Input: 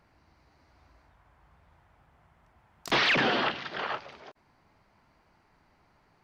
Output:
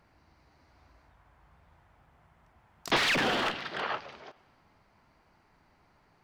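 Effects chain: 2.96–3.81 s: one-sided clip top -29.5 dBFS; reverberation RT60 1.7 s, pre-delay 4 ms, DRR 19 dB

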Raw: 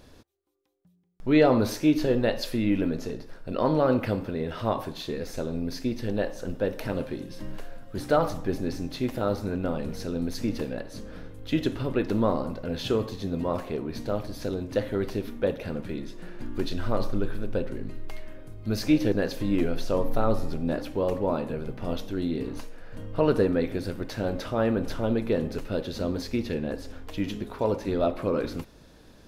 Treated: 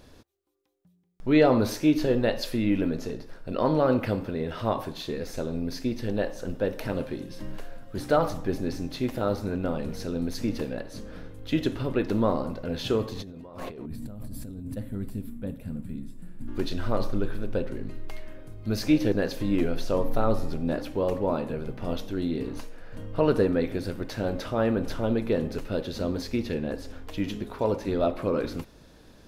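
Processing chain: 13.86–16.48 s: time-frequency box 280–7100 Hz -15 dB; 13.13–14.77 s: compressor with a negative ratio -38 dBFS, ratio -1

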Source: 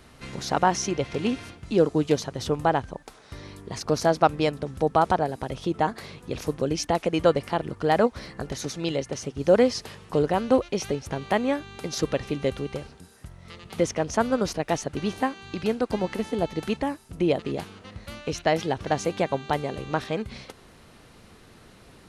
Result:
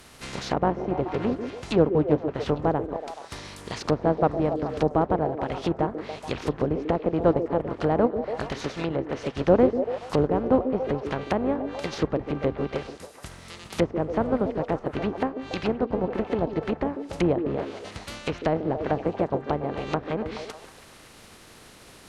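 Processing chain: spectral contrast reduction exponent 0.58; low-pass that closes with the level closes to 690 Hz, closed at -22.5 dBFS; repeats whose band climbs or falls 142 ms, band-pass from 340 Hz, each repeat 0.7 oct, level -5 dB; trim +1.5 dB

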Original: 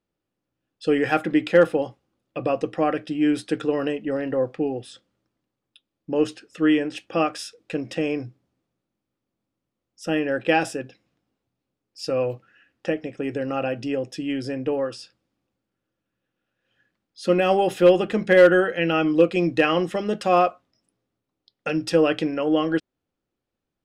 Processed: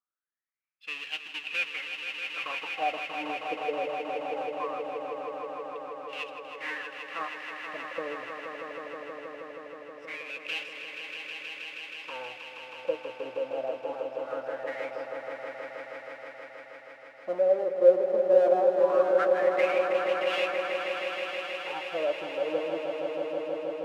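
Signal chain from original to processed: square wave that keeps the level; wah-wah 0.21 Hz 510–2800 Hz, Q 9.8; echo with a slow build-up 159 ms, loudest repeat 5, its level -7.5 dB; trim -2 dB

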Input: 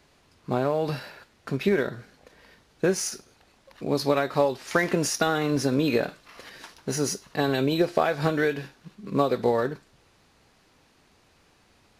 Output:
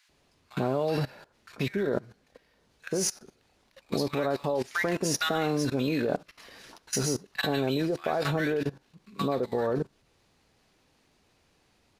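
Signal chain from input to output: bands offset in time highs, lows 90 ms, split 1.3 kHz; level held to a coarse grid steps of 17 dB; upward expansion 1.5:1, over -46 dBFS; trim +8 dB

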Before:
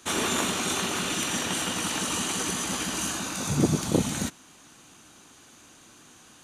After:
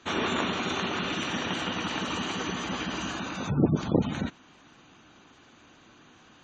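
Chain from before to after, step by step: low-pass 3.6 kHz 12 dB/octave; spectral gate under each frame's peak -25 dB strong

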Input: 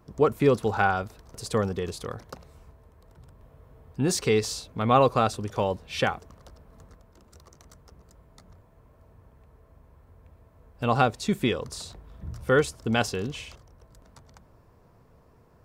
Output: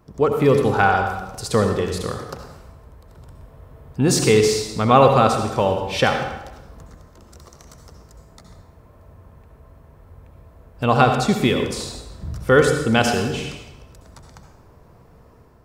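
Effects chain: level rider gain up to 4.5 dB; on a send: reverberation RT60 0.95 s, pre-delay 62 ms, DRR 4.5 dB; on the sum: trim +2.5 dB

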